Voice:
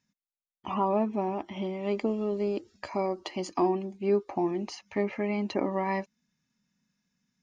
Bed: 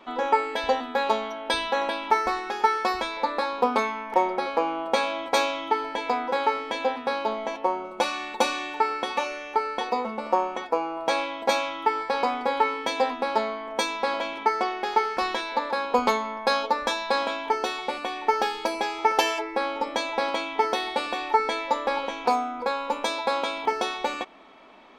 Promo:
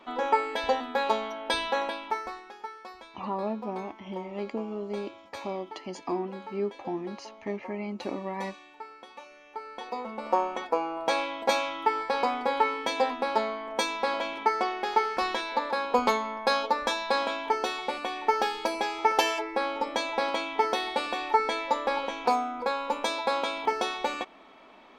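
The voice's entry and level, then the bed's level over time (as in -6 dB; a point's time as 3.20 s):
2.50 s, -5.0 dB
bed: 1.76 s -2.5 dB
2.72 s -19.5 dB
9.26 s -19.5 dB
10.36 s -2 dB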